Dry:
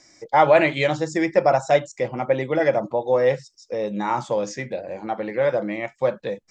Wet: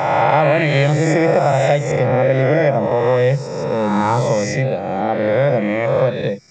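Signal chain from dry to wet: reverse spectral sustain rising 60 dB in 1.59 s; peaking EQ 140 Hz +14 dB 0.89 oct; compression, threshold -14 dBFS, peak gain reduction 8.5 dB; trim +3.5 dB

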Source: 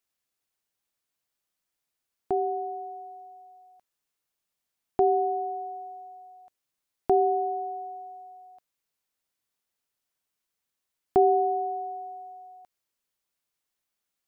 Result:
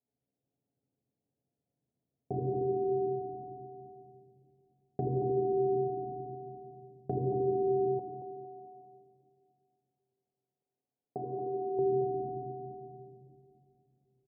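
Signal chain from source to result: square wave that keeps the level; bass shelf 110 Hz -10 dB; feedback comb 140 Hz, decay 0.15 s, harmonics all, mix 70%; reverberation RT60 2.3 s, pre-delay 3 ms, DRR -0.5 dB; compression 4:1, threshold -21 dBFS, peak gain reduction 9 dB; Gaussian low-pass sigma 19 samples; 7.99–11.79 s: tilt EQ +4.5 dB/octave; feedback delay 227 ms, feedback 31%, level -9 dB; tape noise reduction on one side only encoder only; trim +2.5 dB

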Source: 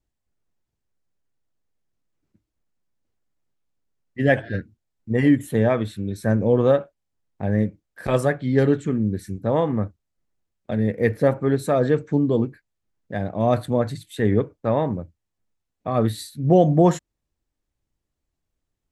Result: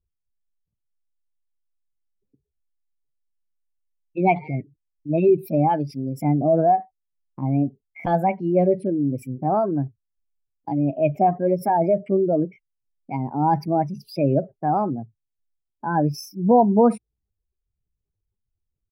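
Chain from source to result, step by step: spectral contrast enhancement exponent 1.8; pitch shift +5 st

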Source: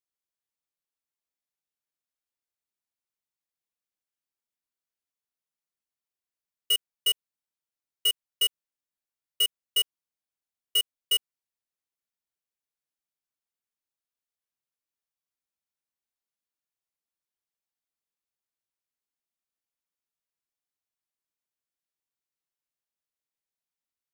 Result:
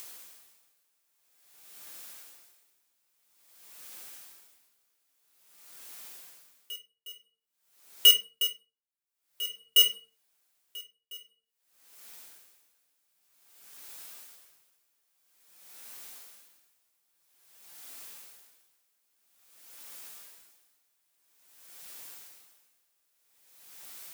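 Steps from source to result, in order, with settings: high-pass 370 Hz 6 dB/octave; treble shelf 7.8 kHz +6 dB; upward compressor, threshold -24 dBFS; simulated room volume 31 m³, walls mixed, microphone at 0.36 m; logarithmic tremolo 0.5 Hz, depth 29 dB; trim +5 dB

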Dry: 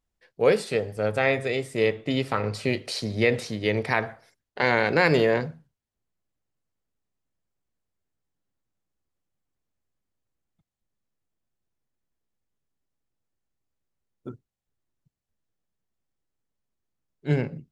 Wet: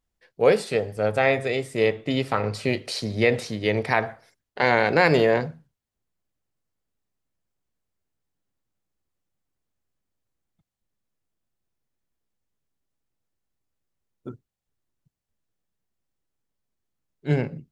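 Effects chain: dynamic bell 730 Hz, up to +4 dB, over -34 dBFS, Q 2.2; trim +1 dB

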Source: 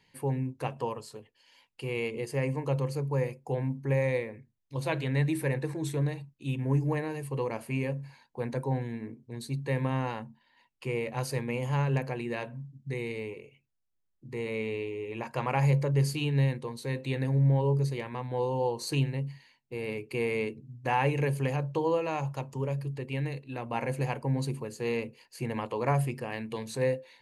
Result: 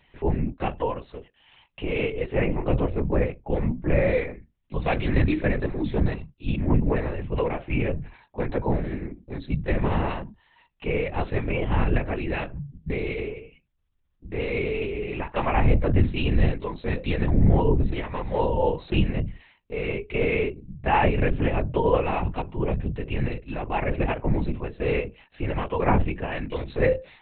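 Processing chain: LPC vocoder at 8 kHz whisper; trim +6.5 dB

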